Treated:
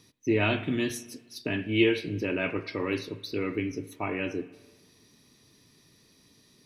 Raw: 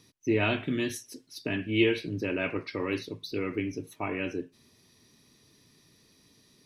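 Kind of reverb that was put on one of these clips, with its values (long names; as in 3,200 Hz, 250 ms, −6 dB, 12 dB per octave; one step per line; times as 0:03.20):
spring reverb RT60 1.3 s, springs 38/59 ms, chirp 60 ms, DRR 15.5 dB
level +1 dB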